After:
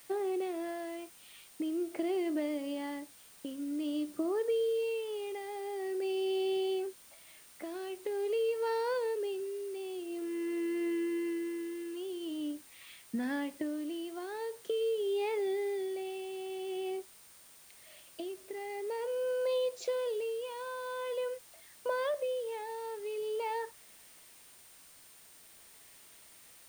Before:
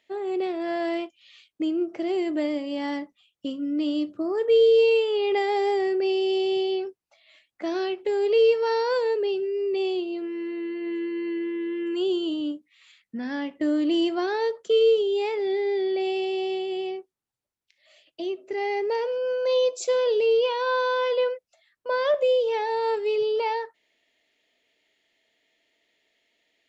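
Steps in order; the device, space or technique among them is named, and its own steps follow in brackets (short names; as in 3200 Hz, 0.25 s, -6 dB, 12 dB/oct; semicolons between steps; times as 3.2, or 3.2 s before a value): medium wave at night (BPF 130–4100 Hz; compressor 4:1, threshold -35 dBFS, peak gain reduction 16.5 dB; tremolo 0.46 Hz, depth 62%; whine 9000 Hz -64 dBFS; white noise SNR 22 dB); gain +3 dB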